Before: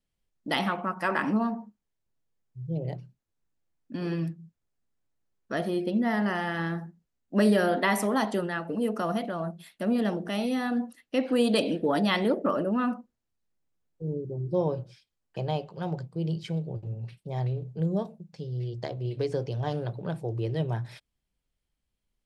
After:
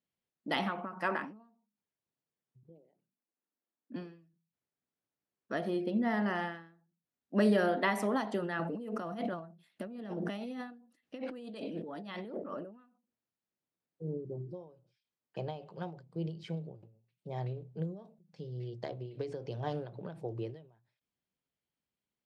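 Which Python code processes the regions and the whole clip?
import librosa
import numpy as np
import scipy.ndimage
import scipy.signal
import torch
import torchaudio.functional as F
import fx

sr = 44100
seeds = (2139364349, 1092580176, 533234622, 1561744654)

y = fx.chain(x, sr, fx.ellip_bandpass(low_hz=220.0, high_hz=9000.0, order=3, stop_db=40),
    fx.air_absorb(metres=370.0), at=(2.63, 3.96))
y = fx.chain(y, sr, fx.low_shelf(hz=120.0, db=8.0),
    fx.over_compress(threshold_db=-35.0, ratio=-1.0), at=(8.59, 12.62))
y = scipy.signal.sosfilt(scipy.signal.butter(2, 150.0, 'highpass', fs=sr, output='sos'), y)
y = fx.high_shelf(y, sr, hz=6800.0, db=-11.5)
y = fx.end_taper(y, sr, db_per_s=100.0)
y = y * 10.0 ** (-4.0 / 20.0)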